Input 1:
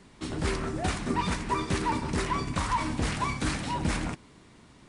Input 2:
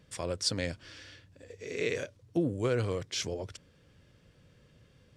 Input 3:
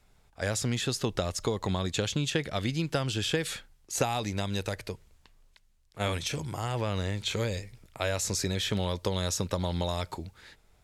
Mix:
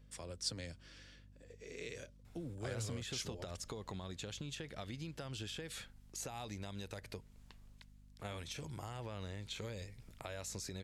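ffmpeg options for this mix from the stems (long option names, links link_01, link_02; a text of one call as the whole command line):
ffmpeg -i stem1.wav -i stem2.wav -i stem3.wav -filter_complex "[1:a]acrossover=split=150|3000[link_01][link_02][link_03];[link_02]acompressor=threshold=-39dB:ratio=2.5[link_04];[link_01][link_04][link_03]amix=inputs=3:normalize=0,highshelf=frequency=9700:gain=6,volume=-9.5dB[link_05];[2:a]alimiter=limit=-21dB:level=0:latency=1:release=197,adelay=2250,volume=-1dB,acompressor=threshold=-48dB:ratio=2.5,volume=0dB[link_06];[link_05][link_06]amix=inputs=2:normalize=0,aeval=exprs='val(0)+0.001*(sin(2*PI*50*n/s)+sin(2*PI*2*50*n/s)/2+sin(2*PI*3*50*n/s)/3+sin(2*PI*4*50*n/s)/4+sin(2*PI*5*50*n/s)/5)':channel_layout=same" out.wav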